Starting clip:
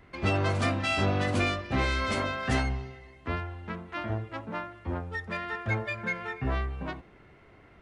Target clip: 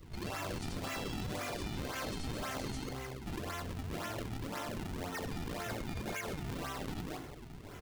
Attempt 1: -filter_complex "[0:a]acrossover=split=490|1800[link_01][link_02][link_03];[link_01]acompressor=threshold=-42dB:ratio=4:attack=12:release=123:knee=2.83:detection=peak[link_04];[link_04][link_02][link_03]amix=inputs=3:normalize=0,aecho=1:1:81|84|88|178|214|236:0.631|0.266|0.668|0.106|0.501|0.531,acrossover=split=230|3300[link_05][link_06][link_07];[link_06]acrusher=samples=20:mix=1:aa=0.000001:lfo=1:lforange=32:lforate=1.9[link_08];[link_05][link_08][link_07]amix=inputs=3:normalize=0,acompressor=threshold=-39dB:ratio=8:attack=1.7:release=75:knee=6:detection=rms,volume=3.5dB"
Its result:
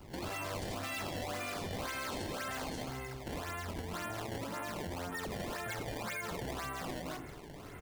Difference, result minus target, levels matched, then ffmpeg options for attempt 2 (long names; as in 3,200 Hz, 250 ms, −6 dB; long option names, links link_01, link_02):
sample-and-hold swept by an LFO: distortion −10 dB
-filter_complex "[0:a]acrossover=split=490|1800[link_01][link_02][link_03];[link_01]acompressor=threshold=-42dB:ratio=4:attack=12:release=123:knee=2.83:detection=peak[link_04];[link_04][link_02][link_03]amix=inputs=3:normalize=0,aecho=1:1:81|84|88|178|214|236:0.631|0.266|0.668|0.106|0.501|0.531,acrossover=split=230|3300[link_05][link_06][link_07];[link_06]acrusher=samples=47:mix=1:aa=0.000001:lfo=1:lforange=75.2:lforate=1.9[link_08];[link_05][link_08][link_07]amix=inputs=3:normalize=0,acompressor=threshold=-39dB:ratio=8:attack=1.7:release=75:knee=6:detection=rms,volume=3.5dB"